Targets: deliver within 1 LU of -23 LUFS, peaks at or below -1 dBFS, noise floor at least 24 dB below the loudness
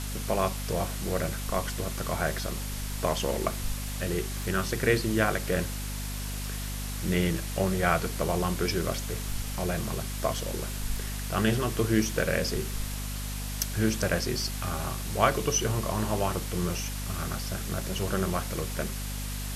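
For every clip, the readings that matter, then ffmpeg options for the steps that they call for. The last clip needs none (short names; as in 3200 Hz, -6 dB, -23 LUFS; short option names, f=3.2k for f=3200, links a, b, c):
hum 50 Hz; harmonics up to 250 Hz; hum level -32 dBFS; noise floor -34 dBFS; noise floor target -54 dBFS; loudness -29.5 LUFS; peak -7.5 dBFS; loudness target -23.0 LUFS
-> -af "bandreject=f=50:t=h:w=4,bandreject=f=100:t=h:w=4,bandreject=f=150:t=h:w=4,bandreject=f=200:t=h:w=4,bandreject=f=250:t=h:w=4"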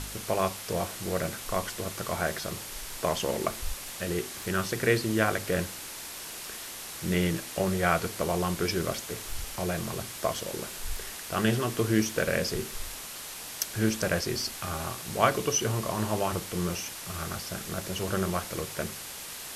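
hum none; noise floor -41 dBFS; noise floor target -55 dBFS
-> -af "afftdn=nr=14:nf=-41"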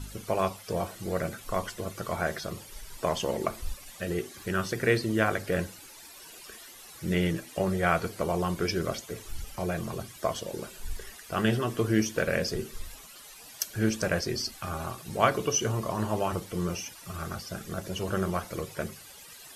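noise floor -49 dBFS; noise floor target -55 dBFS
-> -af "afftdn=nr=6:nf=-49"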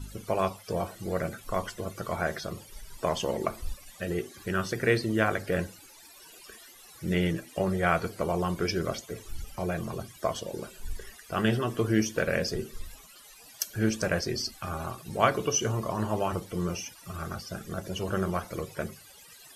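noise floor -52 dBFS; noise floor target -55 dBFS
-> -af "afftdn=nr=6:nf=-52"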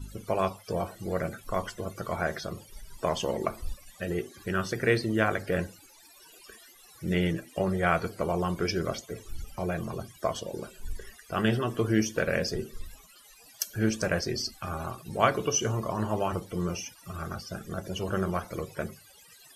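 noise floor -55 dBFS; loudness -30.5 LUFS; peak -7.5 dBFS; loudness target -23.0 LUFS
-> -af "volume=7.5dB,alimiter=limit=-1dB:level=0:latency=1"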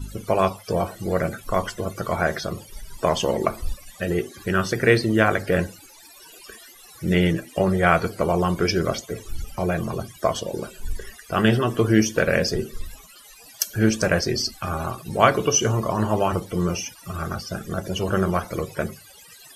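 loudness -23.0 LUFS; peak -1.0 dBFS; noise floor -47 dBFS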